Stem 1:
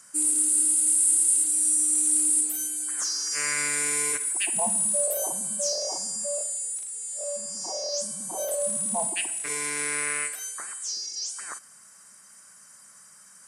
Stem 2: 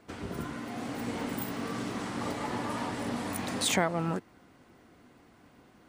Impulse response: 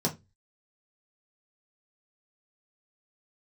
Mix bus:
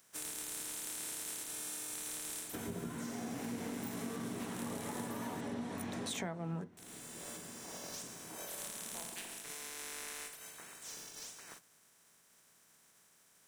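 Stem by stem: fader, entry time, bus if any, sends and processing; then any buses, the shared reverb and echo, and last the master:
-16.0 dB, 0.00 s, muted 5.41–6.77, send -18 dB, spectral contrast lowered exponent 0.28
-1.0 dB, 2.45 s, send -14.5 dB, dry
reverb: on, RT60 0.20 s, pre-delay 3 ms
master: compressor 4:1, threshold -40 dBFS, peak gain reduction 17.5 dB

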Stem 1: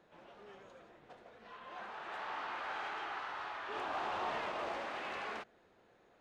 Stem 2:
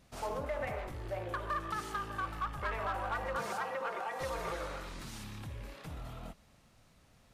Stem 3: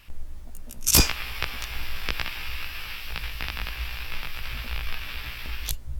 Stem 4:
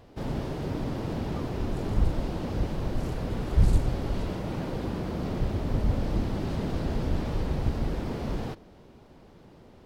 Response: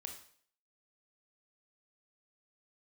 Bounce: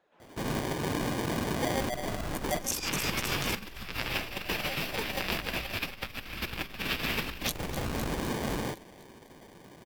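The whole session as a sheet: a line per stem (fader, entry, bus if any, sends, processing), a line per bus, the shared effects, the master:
-4.5 dB, 0.00 s, bus B, no send, no echo send, dry
+2.5 dB, 1.40 s, bus A, no send, no echo send, sine-wave speech
+0.5 dB, 1.80 s, bus B, no send, echo send -20 dB, AGC gain up to 11.5 dB
-1.0 dB, 0.20 s, bus A, no send, no echo send, dry
bus A: 0.0 dB, sample-and-hold 33×; limiter -22.5 dBFS, peak gain reduction 11.5 dB
bus B: 0.0 dB, flange 1.1 Hz, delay 1.1 ms, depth 9.6 ms, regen +22%; limiter -12.5 dBFS, peak gain reduction 8.5 dB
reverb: off
echo: feedback echo 0.253 s, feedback 56%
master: negative-ratio compressor -29 dBFS, ratio -1; low shelf 120 Hz -12 dB

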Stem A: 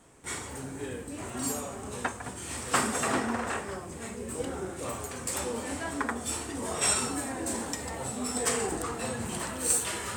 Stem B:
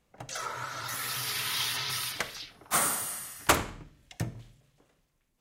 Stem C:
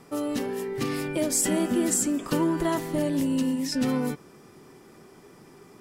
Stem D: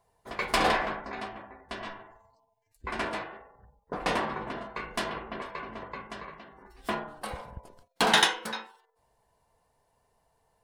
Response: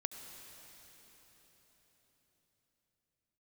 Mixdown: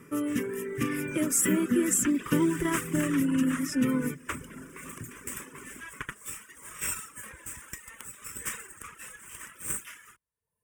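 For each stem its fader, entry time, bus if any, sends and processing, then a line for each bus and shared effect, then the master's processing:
-7.0 dB, 0.00 s, no send, HPF 1100 Hz 12 dB/oct; AGC gain up to 10.5 dB; half-wave rectifier
-8.5 dB, 0.80 s, no send, LPF 6800 Hz
+0.5 dB, 0.00 s, send -7 dB, notches 50/100/150 Hz
-8.0 dB, 0.00 s, no send, flipped gate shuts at -19 dBFS, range -26 dB; high shelf 5700 Hz +11 dB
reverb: on, RT60 4.8 s, pre-delay 65 ms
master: reverb removal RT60 0.71 s; HPF 46 Hz; fixed phaser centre 1800 Hz, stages 4

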